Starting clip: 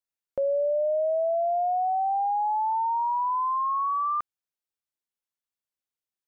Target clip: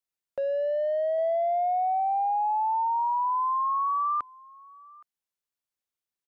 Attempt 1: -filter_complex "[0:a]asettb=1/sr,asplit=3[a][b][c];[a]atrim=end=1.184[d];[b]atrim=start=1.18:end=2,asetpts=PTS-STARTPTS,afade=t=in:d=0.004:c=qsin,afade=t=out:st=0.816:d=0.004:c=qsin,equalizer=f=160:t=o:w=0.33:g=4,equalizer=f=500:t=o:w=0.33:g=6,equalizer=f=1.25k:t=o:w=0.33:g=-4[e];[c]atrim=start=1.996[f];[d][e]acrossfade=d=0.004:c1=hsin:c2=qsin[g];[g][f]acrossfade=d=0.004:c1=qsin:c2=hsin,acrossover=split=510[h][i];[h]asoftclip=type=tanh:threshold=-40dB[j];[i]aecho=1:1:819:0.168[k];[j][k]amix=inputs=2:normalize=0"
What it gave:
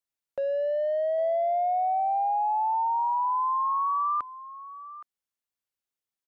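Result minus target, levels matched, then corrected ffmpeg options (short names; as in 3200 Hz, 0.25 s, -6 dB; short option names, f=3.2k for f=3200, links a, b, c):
echo-to-direct +8 dB
-filter_complex "[0:a]asettb=1/sr,asplit=3[a][b][c];[a]atrim=end=1.184[d];[b]atrim=start=1.18:end=2,asetpts=PTS-STARTPTS,afade=t=in:d=0.004:c=qsin,afade=t=out:st=0.816:d=0.004:c=qsin,equalizer=f=160:t=o:w=0.33:g=4,equalizer=f=500:t=o:w=0.33:g=6,equalizer=f=1.25k:t=o:w=0.33:g=-4[e];[c]atrim=start=1.996[f];[d][e]acrossfade=d=0.004:c1=hsin:c2=qsin[g];[g][f]acrossfade=d=0.004:c1=qsin:c2=hsin,acrossover=split=510[h][i];[h]asoftclip=type=tanh:threshold=-40dB[j];[i]aecho=1:1:819:0.0668[k];[j][k]amix=inputs=2:normalize=0"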